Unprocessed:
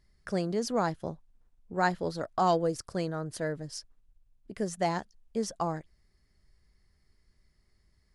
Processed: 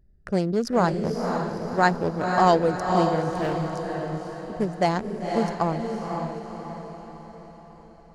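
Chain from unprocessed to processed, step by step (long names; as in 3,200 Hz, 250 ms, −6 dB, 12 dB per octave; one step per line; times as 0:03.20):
adaptive Wiener filter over 41 samples
feedback delay with all-pass diffusion 518 ms, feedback 51%, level −4 dB
0:03.31–0:03.76: hard clipping −29.5 dBFS, distortion −23 dB
level +7.5 dB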